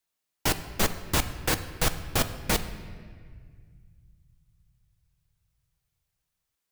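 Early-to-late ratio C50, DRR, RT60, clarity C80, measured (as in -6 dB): 12.0 dB, 9.0 dB, 1.8 s, 13.0 dB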